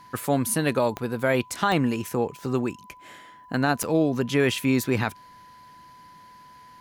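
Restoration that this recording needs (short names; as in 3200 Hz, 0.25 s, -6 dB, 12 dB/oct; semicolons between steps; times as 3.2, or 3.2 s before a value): de-click; notch 1000 Hz, Q 30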